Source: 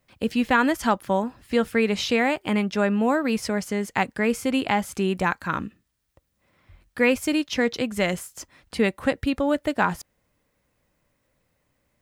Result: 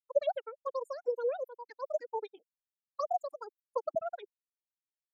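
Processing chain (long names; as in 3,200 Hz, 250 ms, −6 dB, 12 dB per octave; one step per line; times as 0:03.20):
spectral dynamics exaggerated over time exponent 3
parametric band 830 Hz −10 dB 0.66 octaves
wrong playback speed 33 rpm record played at 78 rpm
envelope filter 580–1,400 Hz, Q 2.5, down, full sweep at −27.5 dBFS
one half of a high-frequency compander decoder only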